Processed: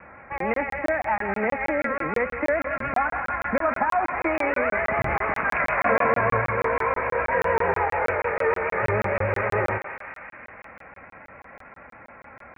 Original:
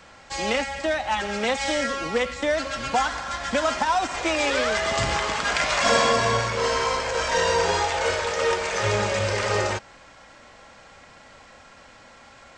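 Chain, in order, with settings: in parallel at 0 dB: compression, threshold -29 dBFS, peak gain reduction 13.5 dB; on the sum: steep low-pass 2.4 kHz 96 dB/octave; vibrato 6.7 Hz 63 cents; high-pass 53 Hz 12 dB/octave; thinning echo 176 ms, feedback 84%, high-pass 990 Hz, level -8 dB; crackling interface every 0.16 s, samples 1024, zero, from 0.38 s; trim -2.5 dB

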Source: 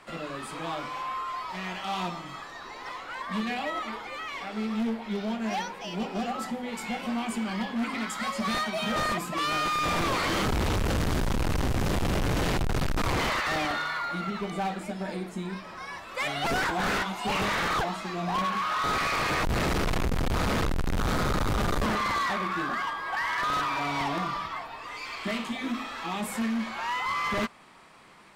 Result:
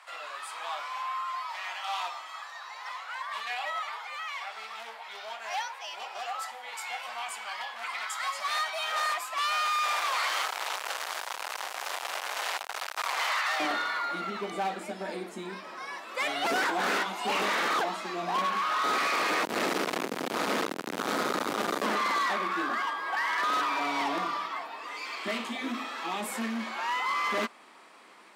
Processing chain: high-pass 730 Hz 24 dB/octave, from 13.60 s 250 Hz

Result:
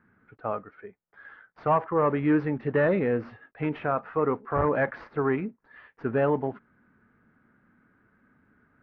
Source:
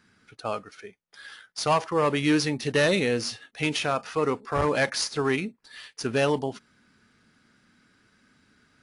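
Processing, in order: block-companded coder 5-bit; low-pass 1.7 kHz 24 dB/octave

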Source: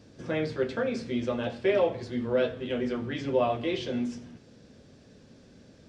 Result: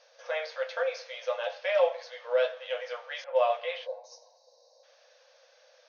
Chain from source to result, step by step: 3.86–4.84 s: time-frequency box 1.1–3.7 kHz -25 dB; brick-wall FIR band-pass 480–6700 Hz; 3.24–4.04 s: level-controlled noise filter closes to 1 kHz, open at -22 dBFS; trim +1.5 dB

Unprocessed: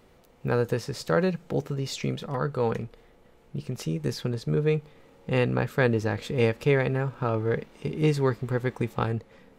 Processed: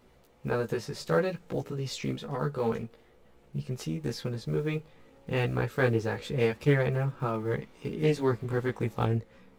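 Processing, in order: block-companded coder 7-bit; chorus voices 2, 0.29 Hz, delay 16 ms, depth 2.7 ms; loudspeaker Doppler distortion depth 0.2 ms

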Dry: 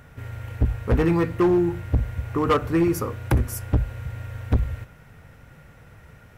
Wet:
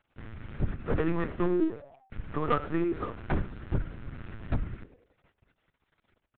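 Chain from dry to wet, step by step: 1.61–2.12 s: formants replaced by sine waves; dynamic bell 1.4 kHz, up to +5 dB, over -45 dBFS, Q 1.9; in parallel at -2 dB: compression 6:1, threshold -31 dBFS, peak gain reduction 17 dB; on the sum: crossover distortion -36.5 dBFS; frequency-shifting echo 98 ms, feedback 50%, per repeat +110 Hz, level -20 dB; on a send at -20.5 dB: reverberation RT60 0.35 s, pre-delay 7 ms; on the sum: LPC vocoder at 8 kHz pitch kept; trim -9 dB

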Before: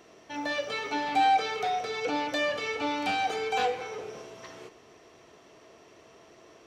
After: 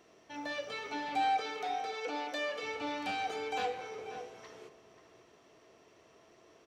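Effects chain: 1.41–2.63 s: high-pass 290 Hz 12 dB/octave; echo from a far wall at 92 m, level -10 dB; trim -7.5 dB

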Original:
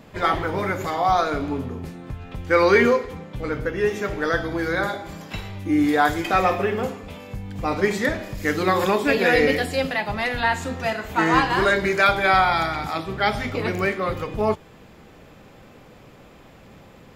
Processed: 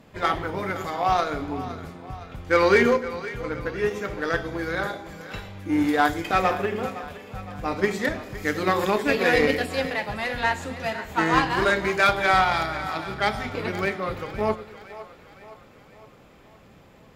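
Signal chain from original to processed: Chebyshev shaper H 7 -26 dB, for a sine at -4.5 dBFS; two-band feedback delay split 450 Hz, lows 105 ms, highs 513 ms, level -14 dB; trim -1.5 dB

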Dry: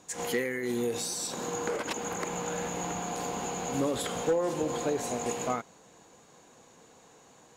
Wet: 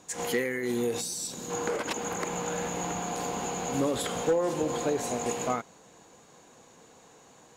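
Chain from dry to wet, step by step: 1.01–1.50 s: peaking EQ 990 Hz -11.5 dB 3 oct; trim +1.5 dB

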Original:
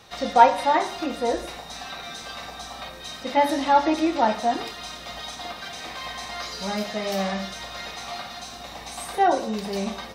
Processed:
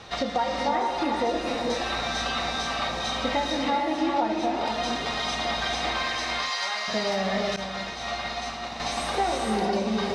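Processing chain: compression 10:1, threshold -31 dBFS, peak gain reduction 23 dB; 6.03–6.88 s: high-pass 970 Hz 12 dB/octave; gated-style reverb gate 490 ms rising, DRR 0 dB; 7.56–8.80 s: expander -28 dBFS; distance through air 79 m; trim +7 dB

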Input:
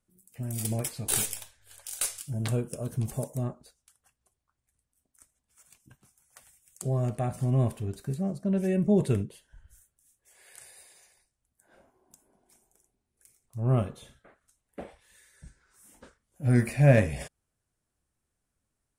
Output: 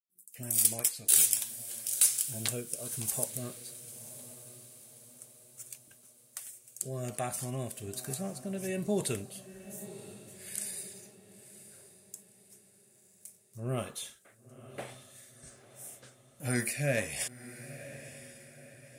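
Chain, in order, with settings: expander -56 dBFS; tilt EQ +4 dB/octave; in parallel at -1 dB: compression, threshold -35 dBFS, peak gain reduction 23 dB; on the sum: rotary cabinet horn 1.2 Hz; echo that smears into a reverb 999 ms, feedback 44%, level -14 dB; trim -3 dB

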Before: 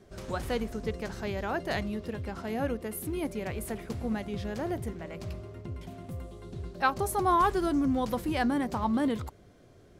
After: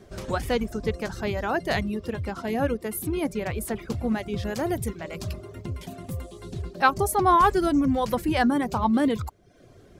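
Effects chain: reverb removal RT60 0.65 s; 4.43–6.62 s: treble shelf 3.8 kHz +8 dB; trim +6.5 dB

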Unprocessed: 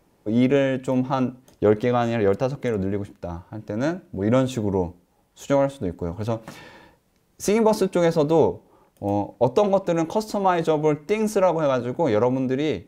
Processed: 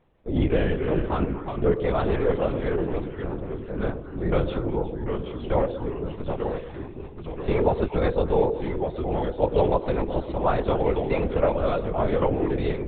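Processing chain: ever faster or slower copies 219 ms, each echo -2 st, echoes 3, each echo -6 dB; LPC vocoder at 8 kHz whisper; repeats whose band climbs or falls 120 ms, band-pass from 430 Hz, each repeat 1.4 oct, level -9 dB; trim -3.5 dB

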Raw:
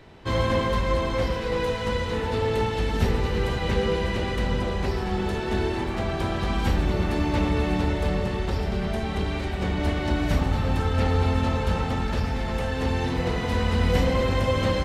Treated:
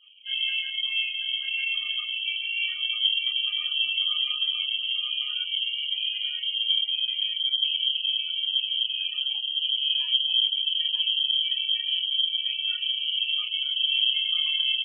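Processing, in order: rattle on loud lows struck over -22 dBFS, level -30 dBFS; 6.52–7.64 s: elliptic band-stop 120–930 Hz; spectral gate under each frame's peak -10 dB strong; Chebyshev shaper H 8 -39 dB, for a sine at -11.5 dBFS; distance through air 460 m; delay 942 ms -4.5 dB; chorus voices 6, 0.32 Hz, delay 30 ms, depth 2 ms; frequency inversion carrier 3.2 kHz; trim -2 dB

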